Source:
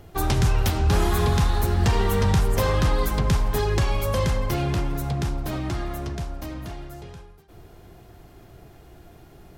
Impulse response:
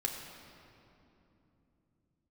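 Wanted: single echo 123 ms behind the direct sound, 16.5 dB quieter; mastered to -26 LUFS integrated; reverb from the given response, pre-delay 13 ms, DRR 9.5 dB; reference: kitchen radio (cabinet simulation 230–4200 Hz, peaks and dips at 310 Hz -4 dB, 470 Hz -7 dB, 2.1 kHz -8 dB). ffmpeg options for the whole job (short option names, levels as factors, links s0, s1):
-filter_complex "[0:a]aecho=1:1:123:0.15,asplit=2[s0][s1];[1:a]atrim=start_sample=2205,adelay=13[s2];[s1][s2]afir=irnorm=-1:irlink=0,volume=0.251[s3];[s0][s3]amix=inputs=2:normalize=0,highpass=230,equalizer=f=310:t=q:w=4:g=-4,equalizer=f=470:t=q:w=4:g=-7,equalizer=f=2100:t=q:w=4:g=-8,lowpass=f=4200:w=0.5412,lowpass=f=4200:w=1.3066,volume=1.58"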